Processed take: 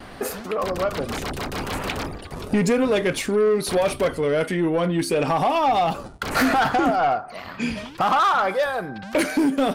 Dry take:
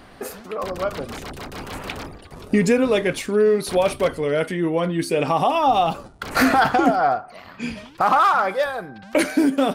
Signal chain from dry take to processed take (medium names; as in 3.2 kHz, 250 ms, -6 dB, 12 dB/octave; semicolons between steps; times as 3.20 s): gate with hold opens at -38 dBFS; in parallel at +2.5 dB: compression, threshold -29 dBFS, peak gain reduction 16.5 dB; on the sum: saturation -12 dBFS, distortion -15 dB; trim -1.5 dB